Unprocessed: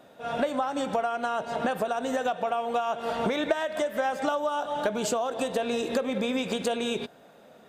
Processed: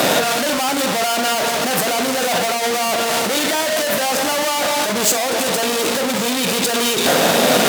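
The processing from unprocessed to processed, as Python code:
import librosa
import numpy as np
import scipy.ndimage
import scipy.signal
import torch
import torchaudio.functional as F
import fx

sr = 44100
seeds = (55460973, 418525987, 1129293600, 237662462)

y = fx.fuzz(x, sr, gain_db=53.0, gate_db=-58.0)
y = y + 10.0 ** (-14.5 / 20.0) * np.pad(y, (int(1114 * sr / 1000.0), 0))[:len(y)]
y = fx.over_compress(y, sr, threshold_db=-17.0, ratio=-0.5)
y = scipy.signal.sosfilt(scipy.signal.butter(2, 140.0, 'highpass', fs=sr, output='sos'), y)
y = fx.high_shelf(y, sr, hz=3400.0, db=8.5)
y = fx.doubler(y, sr, ms=45.0, db=-12)
y = F.gain(torch.from_numpy(y), -1.0).numpy()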